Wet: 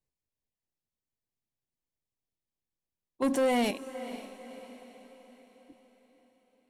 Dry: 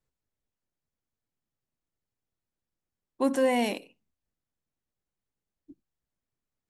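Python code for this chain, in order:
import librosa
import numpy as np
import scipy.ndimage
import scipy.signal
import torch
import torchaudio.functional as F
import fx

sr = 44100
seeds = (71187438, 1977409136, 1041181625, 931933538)

p1 = fx.peak_eq(x, sr, hz=1400.0, db=-12.5, octaves=0.26)
p2 = fx.leveller(p1, sr, passes=2, at=(3.22, 3.71))
p3 = p2 + fx.echo_diffused(p2, sr, ms=510, feedback_pct=48, wet_db=-13.5, dry=0)
y = F.gain(torch.from_numpy(p3), -5.5).numpy()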